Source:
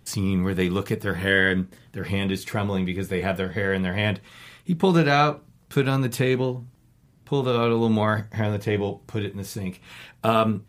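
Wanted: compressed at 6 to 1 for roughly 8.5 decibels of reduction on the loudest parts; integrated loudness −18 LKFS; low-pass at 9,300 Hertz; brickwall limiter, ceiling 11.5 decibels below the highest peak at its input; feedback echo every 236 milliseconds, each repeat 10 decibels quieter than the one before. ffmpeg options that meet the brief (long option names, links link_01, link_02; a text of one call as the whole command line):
ffmpeg -i in.wav -af "lowpass=9300,acompressor=threshold=-23dB:ratio=6,alimiter=limit=-21.5dB:level=0:latency=1,aecho=1:1:236|472|708|944:0.316|0.101|0.0324|0.0104,volume=14.5dB" out.wav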